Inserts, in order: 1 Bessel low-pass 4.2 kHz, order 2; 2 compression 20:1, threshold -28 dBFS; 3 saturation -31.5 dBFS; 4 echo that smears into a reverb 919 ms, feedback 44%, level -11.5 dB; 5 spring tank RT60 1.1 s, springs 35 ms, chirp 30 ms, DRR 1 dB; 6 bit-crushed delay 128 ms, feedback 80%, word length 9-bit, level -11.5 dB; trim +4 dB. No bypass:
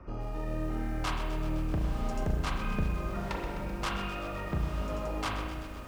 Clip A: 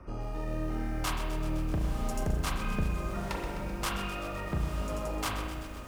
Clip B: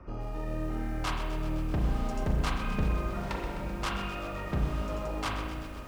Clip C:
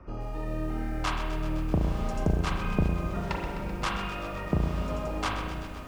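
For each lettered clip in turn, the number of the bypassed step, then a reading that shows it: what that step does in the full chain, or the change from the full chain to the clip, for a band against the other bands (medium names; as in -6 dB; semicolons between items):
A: 1, 8 kHz band +6.5 dB; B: 2, momentary loudness spread change +1 LU; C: 3, distortion -12 dB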